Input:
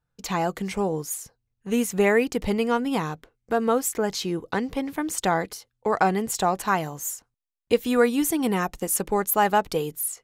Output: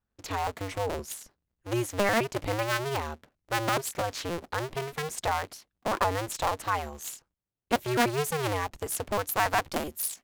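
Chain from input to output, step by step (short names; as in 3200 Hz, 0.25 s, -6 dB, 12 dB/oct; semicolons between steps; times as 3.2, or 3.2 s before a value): cycle switcher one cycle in 2, inverted; high shelf 6300 Hz -3.5 dB, from 9.73 s +3 dB; gain -5.5 dB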